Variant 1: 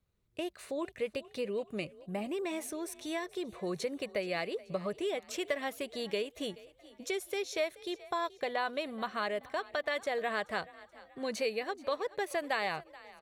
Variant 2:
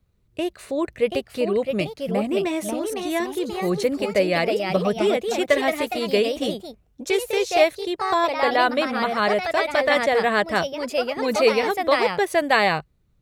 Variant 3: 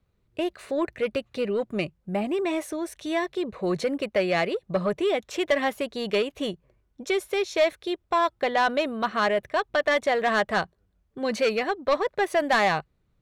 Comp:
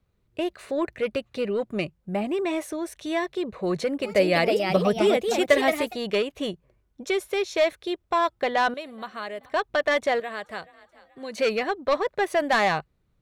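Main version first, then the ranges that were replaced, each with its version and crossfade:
3
4.11–5.87 from 2, crossfade 0.24 s
8.74–9.52 from 1
10.2–11.38 from 1

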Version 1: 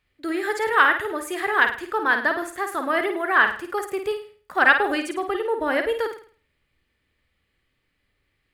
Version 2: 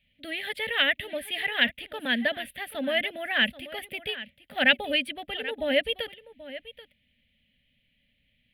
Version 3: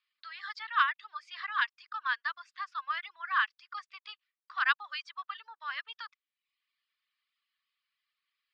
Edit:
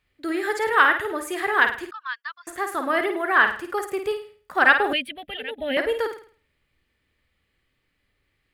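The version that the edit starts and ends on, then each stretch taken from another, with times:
1
1.91–2.47 from 3
4.93–5.77 from 2

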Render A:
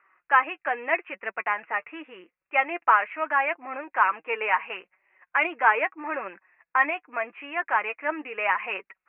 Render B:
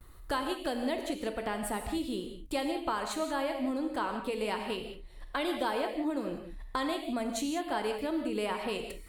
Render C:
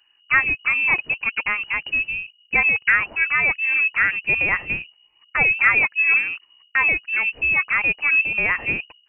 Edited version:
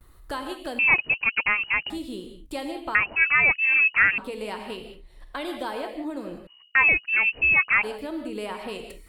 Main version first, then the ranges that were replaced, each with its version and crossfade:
B
0.79–1.9 from C
2.95–4.18 from C
6.47–7.83 from C
not used: A

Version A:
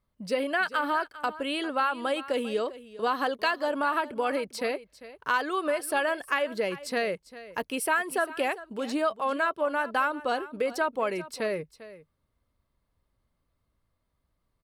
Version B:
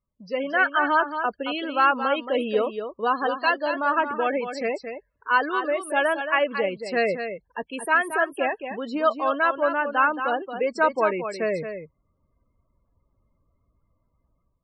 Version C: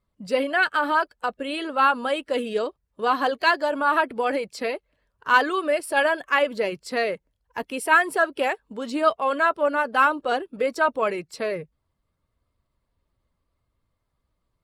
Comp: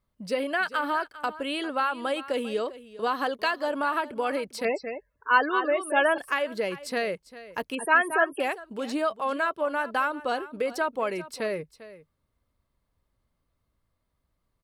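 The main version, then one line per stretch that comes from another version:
A
4.65–6.18 from B
7.75–8.4 from B
not used: C

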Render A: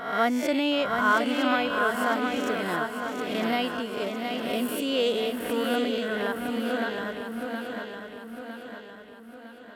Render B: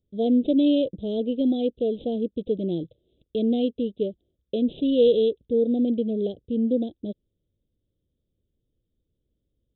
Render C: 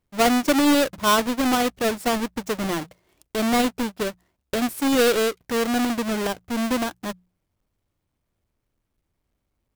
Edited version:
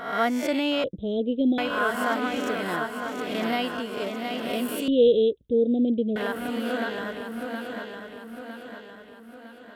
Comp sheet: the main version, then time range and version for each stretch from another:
A
0.84–1.58 from B
4.88–6.16 from B
not used: C

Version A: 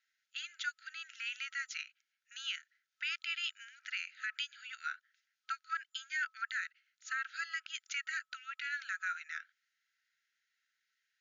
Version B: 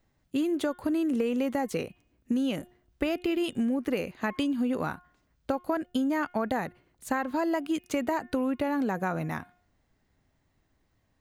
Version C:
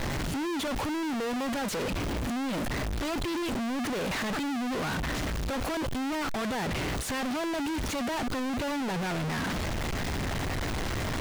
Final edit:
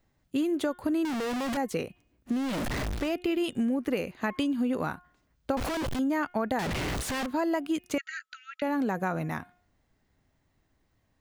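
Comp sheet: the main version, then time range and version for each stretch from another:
B
1.05–1.57 from C
2.38–3.03 from C, crossfade 0.24 s
5.57–5.99 from C
6.59–7.26 from C
7.98–8.62 from A

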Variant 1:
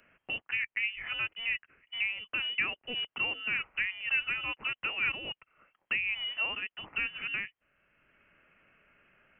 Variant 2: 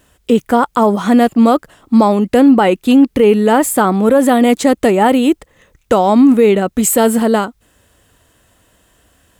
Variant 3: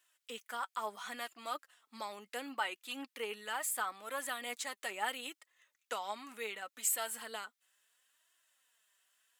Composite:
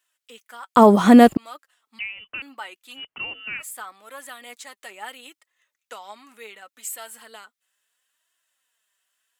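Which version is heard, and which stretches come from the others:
3
0.76–1.37 from 2
1.99–2.42 from 1
2.99–3.62 from 1, crossfade 0.10 s

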